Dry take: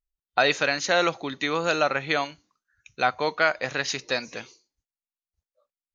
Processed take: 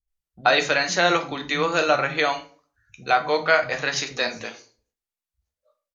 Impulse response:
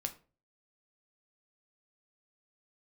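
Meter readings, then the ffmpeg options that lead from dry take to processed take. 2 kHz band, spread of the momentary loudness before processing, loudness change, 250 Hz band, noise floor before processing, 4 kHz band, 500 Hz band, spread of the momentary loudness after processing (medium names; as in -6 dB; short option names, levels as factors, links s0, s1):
+3.0 dB, 7 LU, +3.0 dB, +2.0 dB, under -85 dBFS, +3.0 dB, +3.0 dB, 8 LU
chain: -filter_complex "[0:a]acrossover=split=220[s0][s1];[s1]adelay=80[s2];[s0][s2]amix=inputs=2:normalize=0[s3];[1:a]atrim=start_sample=2205,asetrate=37485,aresample=44100[s4];[s3][s4]afir=irnorm=-1:irlink=0,volume=1.33"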